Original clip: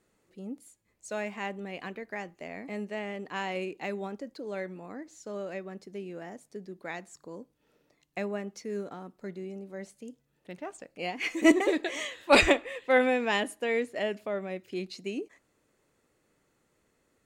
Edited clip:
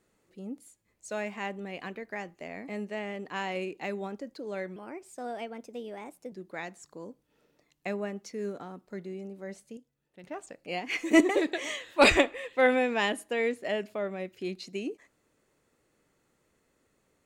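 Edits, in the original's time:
4.76–6.63 s: speed 120%
10.08–10.55 s: gain -7.5 dB

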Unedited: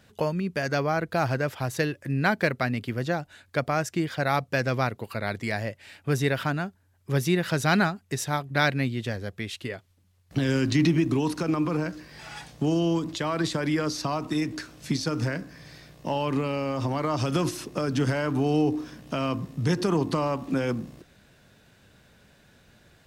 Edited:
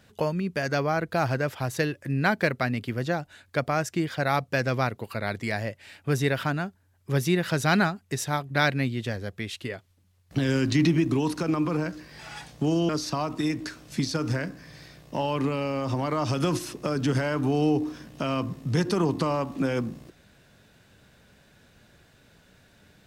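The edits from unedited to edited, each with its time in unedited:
12.89–13.81 s: delete

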